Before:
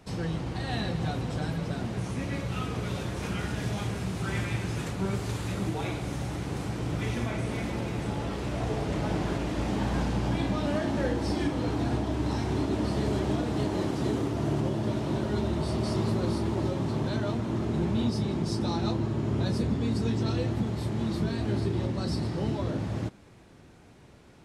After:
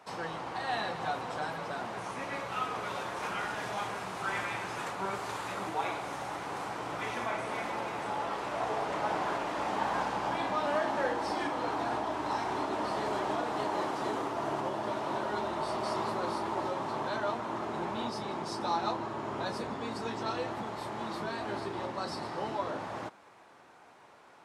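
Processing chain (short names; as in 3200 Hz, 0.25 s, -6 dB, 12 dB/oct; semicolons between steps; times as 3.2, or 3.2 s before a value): HPF 660 Hz 6 dB/oct; bell 960 Hz +13.5 dB 1.9 oct; gain -4.5 dB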